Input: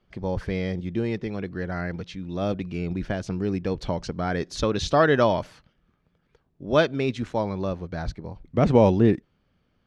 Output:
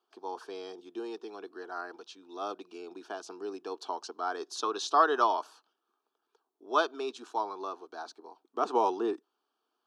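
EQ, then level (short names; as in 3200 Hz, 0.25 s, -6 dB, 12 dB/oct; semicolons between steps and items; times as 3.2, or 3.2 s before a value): dynamic EQ 1200 Hz, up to +6 dB, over -41 dBFS, Q 2.5; HPF 410 Hz 24 dB/oct; fixed phaser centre 550 Hz, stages 6; -2.0 dB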